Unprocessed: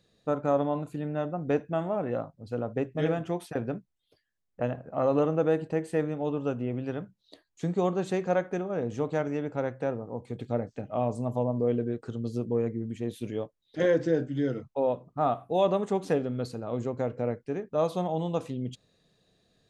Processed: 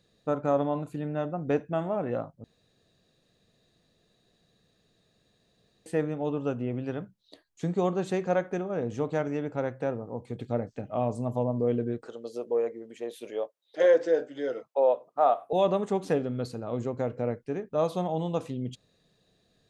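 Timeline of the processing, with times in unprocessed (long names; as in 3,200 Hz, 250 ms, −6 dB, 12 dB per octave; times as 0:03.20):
0:02.44–0:05.86: fill with room tone
0:12.06–0:15.53: high-pass with resonance 550 Hz, resonance Q 1.8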